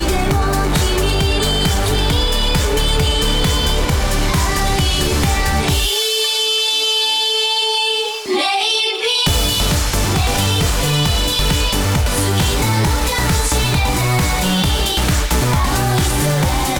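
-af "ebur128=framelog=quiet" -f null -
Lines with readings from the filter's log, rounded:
Integrated loudness:
  I:         -15.6 LUFS
  Threshold: -25.6 LUFS
Loudness range:
  LRA:         1.5 LU
  Threshold: -35.5 LUFS
  LRA low:   -16.0 LUFS
  LRA high:  -14.6 LUFS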